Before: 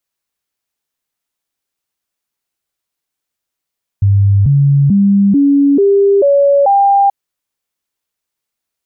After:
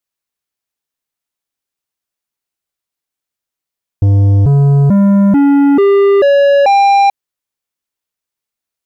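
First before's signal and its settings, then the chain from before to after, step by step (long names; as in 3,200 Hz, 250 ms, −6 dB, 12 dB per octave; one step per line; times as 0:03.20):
stepped sweep 99.6 Hz up, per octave 2, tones 7, 0.44 s, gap 0.00 s −6 dBFS
leveller curve on the samples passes 2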